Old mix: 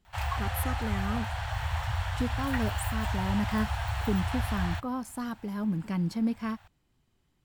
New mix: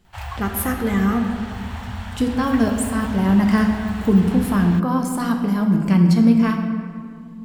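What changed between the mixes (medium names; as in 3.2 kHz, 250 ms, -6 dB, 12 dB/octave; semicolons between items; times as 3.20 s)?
speech +10.0 dB; reverb: on, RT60 2.2 s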